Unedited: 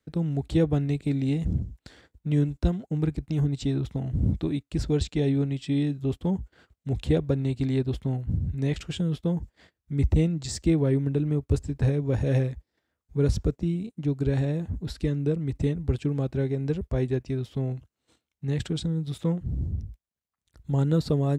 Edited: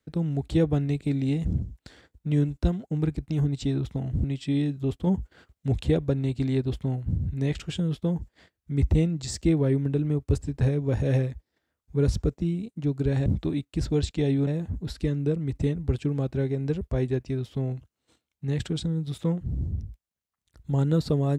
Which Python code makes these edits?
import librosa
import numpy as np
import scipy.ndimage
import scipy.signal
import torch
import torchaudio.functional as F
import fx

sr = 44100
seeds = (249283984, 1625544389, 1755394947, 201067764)

y = fx.edit(x, sr, fx.move(start_s=4.24, length_s=1.21, to_s=14.47),
    fx.clip_gain(start_s=6.28, length_s=0.73, db=3.0), tone=tone)